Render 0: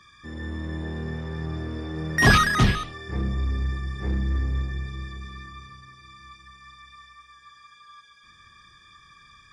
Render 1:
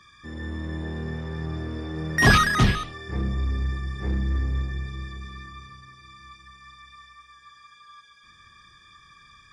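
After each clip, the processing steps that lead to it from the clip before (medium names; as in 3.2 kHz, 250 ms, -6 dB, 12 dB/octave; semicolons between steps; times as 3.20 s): no audible change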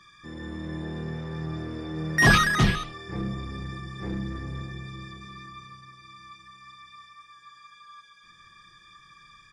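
peaking EQ 64 Hz -11.5 dB 0.37 oct; comb 5.9 ms, depth 31%; trim -1.5 dB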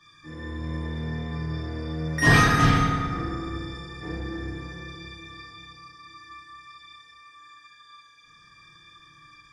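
FDN reverb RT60 2.1 s, low-frequency decay 1.05×, high-frequency decay 0.45×, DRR -8 dB; trim -6.5 dB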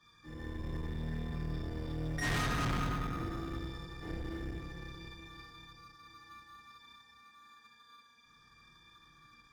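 octave divider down 2 oct, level -2 dB; in parallel at -12 dB: sample-and-hold 17×; on the sum: valve stage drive 23 dB, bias 0.5; trim -7.5 dB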